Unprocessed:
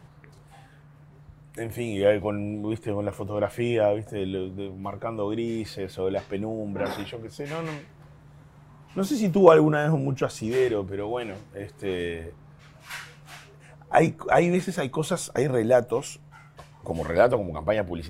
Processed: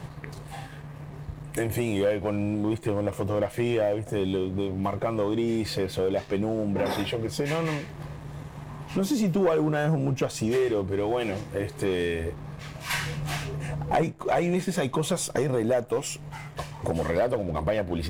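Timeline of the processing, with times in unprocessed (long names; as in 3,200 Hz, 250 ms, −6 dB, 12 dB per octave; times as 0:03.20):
0:12.93–0:14.03: low-shelf EQ 460 Hz +7.5 dB
whole clip: notch filter 1,400 Hz, Q 6.6; downward compressor 3 to 1, threshold −37 dBFS; leveller curve on the samples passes 2; level +4.5 dB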